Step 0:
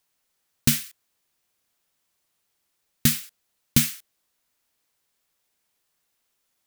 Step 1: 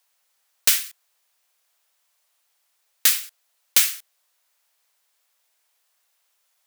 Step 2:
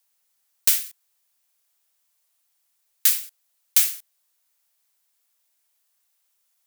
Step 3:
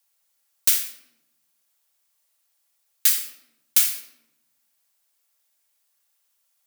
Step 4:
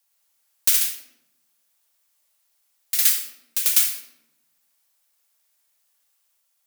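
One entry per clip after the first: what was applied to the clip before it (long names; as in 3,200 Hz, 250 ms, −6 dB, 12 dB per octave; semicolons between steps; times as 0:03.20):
high-pass filter 540 Hz 24 dB per octave; level +5 dB
high-shelf EQ 5,800 Hz +9 dB; level −8 dB
rectangular room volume 3,000 cubic metres, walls furnished, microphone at 2.3 metres; level −1 dB
delay with pitch and tempo change per echo 106 ms, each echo +1 semitone, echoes 2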